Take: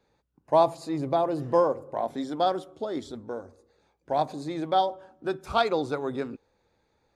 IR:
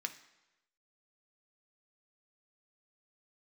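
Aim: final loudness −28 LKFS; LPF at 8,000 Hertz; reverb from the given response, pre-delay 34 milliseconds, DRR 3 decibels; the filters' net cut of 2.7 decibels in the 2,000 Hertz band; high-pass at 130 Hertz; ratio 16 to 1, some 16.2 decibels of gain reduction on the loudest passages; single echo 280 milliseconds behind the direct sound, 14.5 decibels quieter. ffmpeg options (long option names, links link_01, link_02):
-filter_complex "[0:a]highpass=130,lowpass=8000,equalizer=frequency=2000:width_type=o:gain=-4,acompressor=threshold=-32dB:ratio=16,aecho=1:1:280:0.188,asplit=2[link_01][link_02];[1:a]atrim=start_sample=2205,adelay=34[link_03];[link_02][link_03]afir=irnorm=-1:irlink=0,volume=-3dB[link_04];[link_01][link_04]amix=inputs=2:normalize=0,volume=9.5dB"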